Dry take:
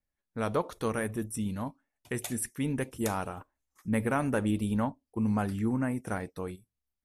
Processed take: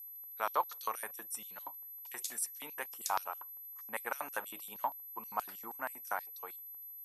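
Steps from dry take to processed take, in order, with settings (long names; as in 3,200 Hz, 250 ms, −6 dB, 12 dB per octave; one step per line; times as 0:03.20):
steady tone 12,000 Hz −43 dBFS
harmonic generator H 8 −40 dB, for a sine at −16.5 dBFS
auto-filter high-pass square 6.3 Hz 910–4,900 Hz
level −3.5 dB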